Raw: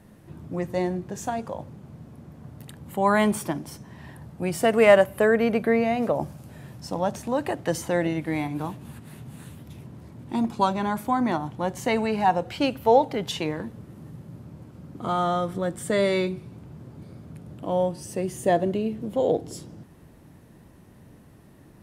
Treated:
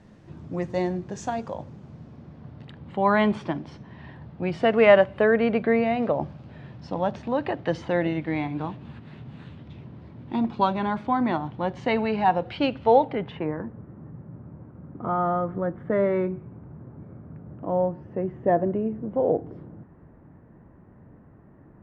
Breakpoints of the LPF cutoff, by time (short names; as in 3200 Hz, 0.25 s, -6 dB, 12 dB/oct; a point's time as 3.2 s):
LPF 24 dB/oct
1.82 s 6600 Hz
2.71 s 4000 Hz
12.95 s 4000 Hz
13.47 s 1700 Hz